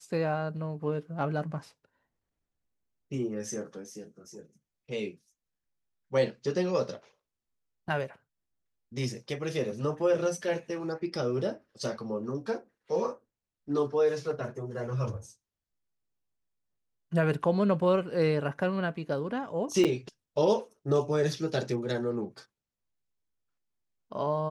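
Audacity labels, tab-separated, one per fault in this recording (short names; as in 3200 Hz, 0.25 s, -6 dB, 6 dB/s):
19.840000	19.850000	gap 7.5 ms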